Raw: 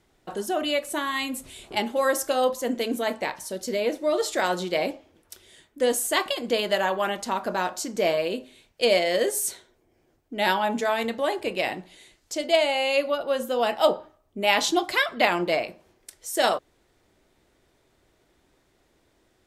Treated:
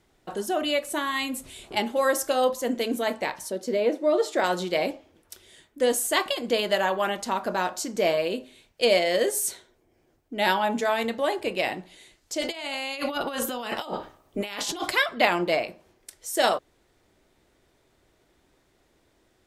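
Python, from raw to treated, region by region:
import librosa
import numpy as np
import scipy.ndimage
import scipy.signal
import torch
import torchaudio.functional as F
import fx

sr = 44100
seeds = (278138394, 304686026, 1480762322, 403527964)

y = fx.chain(x, sr, fx.highpass(hz=260.0, slope=12),
    fx.tilt_eq(slope=-2.5), at=(3.5, 4.44))
y = fx.spec_clip(y, sr, under_db=13, at=(12.4, 14.89), fade=0.02)
y = fx.over_compress(y, sr, threshold_db=-31.0, ratio=-1.0, at=(12.4, 14.89), fade=0.02)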